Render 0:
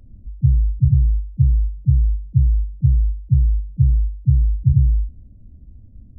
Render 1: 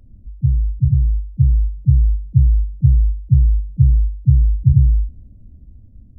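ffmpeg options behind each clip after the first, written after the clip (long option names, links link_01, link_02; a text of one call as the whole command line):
ffmpeg -i in.wav -af "dynaudnorm=framelen=530:gausssize=5:maxgain=11.5dB,volume=-1dB" out.wav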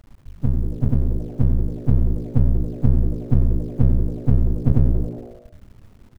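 ffmpeg -i in.wav -filter_complex "[0:a]aeval=exprs='max(val(0),0)':channel_layout=same,acrusher=bits=8:mix=0:aa=0.000001,asplit=2[link_01][link_02];[link_02]asplit=5[link_03][link_04][link_05][link_06][link_07];[link_03]adelay=92,afreqshift=120,volume=-14.5dB[link_08];[link_04]adelay=184,afreqshift=240,volume=-20dB[link_09];[link_05]adelay=276,afreqshift=360,volume=-25.5dB[link_10];[link_06]adelay=368,afreqshift=480,volume=-31dB[link_11];[link_07]adelay=460,afreqshift=600,volume=-36.6dB[link_12];[link_08][link_09][link_10][link_11][link_12]amix=inputs=5:normalize=0[link_13];[link_01][link_13]amix=inputs=2:normalize=0,volume=-1dB" out.wav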